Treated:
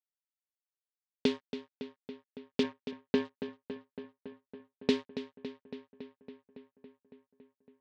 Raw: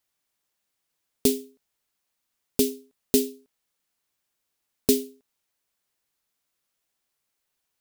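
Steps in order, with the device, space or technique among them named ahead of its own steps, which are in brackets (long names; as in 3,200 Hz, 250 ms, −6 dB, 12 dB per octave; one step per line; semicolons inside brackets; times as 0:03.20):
0:02.63–0:03.25: low-pass filter 1,900 Hz 6 dB per octave
blown loudspeaker (dead-zone distortion −33 dBFS; loudspeaker in its box 200–3,500 Hz, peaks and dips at 270 Hz −5 dB, 390 Hz −8 dB, 690 Hz −7 dB, 1,100 Hz −4 dB, 1,900 Hz +5 dB)
feedback echo with a low-pass in the loop 279 ms, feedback 75%, low-pass 4,900 Hz, level −11 dB
level +2 dB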